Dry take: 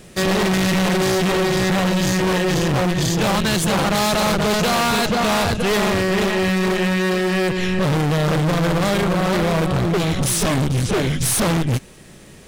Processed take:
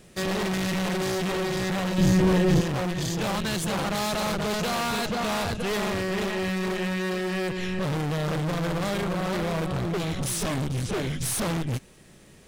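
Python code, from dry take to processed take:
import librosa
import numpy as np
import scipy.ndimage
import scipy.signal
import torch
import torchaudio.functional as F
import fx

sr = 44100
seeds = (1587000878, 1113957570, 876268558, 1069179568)

y = fx.low_shelf(x, sr, hz=430.0, db=11.5, at=(1.98, 2.61))
y = y * 10.0 ** (-9.0 / 20.0)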